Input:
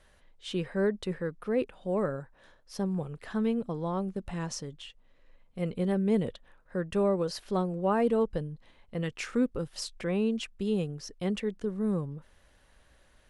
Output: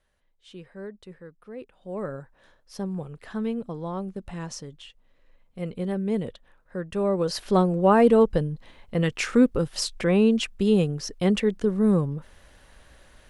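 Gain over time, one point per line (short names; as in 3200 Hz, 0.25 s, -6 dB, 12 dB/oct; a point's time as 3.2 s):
1.6 s -11 dB
2.15 s 0 dB
6.96 s 0 dB
7.43 s +9 dB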